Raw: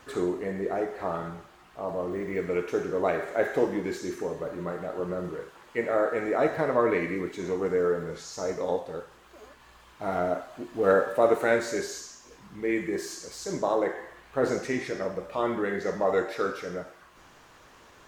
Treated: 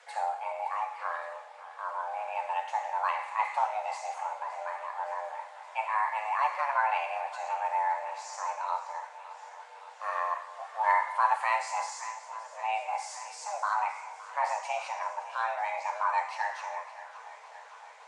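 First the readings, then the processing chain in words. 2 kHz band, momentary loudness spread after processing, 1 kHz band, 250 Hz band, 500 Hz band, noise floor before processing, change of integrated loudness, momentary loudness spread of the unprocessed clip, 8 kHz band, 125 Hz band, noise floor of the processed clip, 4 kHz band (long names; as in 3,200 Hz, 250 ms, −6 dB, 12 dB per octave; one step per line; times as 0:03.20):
−0.5 dB, 15 LU, +6.0 dB, below −40 dB, −14.5 dB, −55 dBFS, −3.5 dB, 13 LU, −3.0 dB, below −40 dB, −50 dBFS, −3.0 dB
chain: frequency shifter +430 Hz
delay that swaps between a low-pass and a high-pass 283 ms, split 930 Hz, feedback 83%, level −14 dB
downsampling to 22,050 Hz
level −4 dB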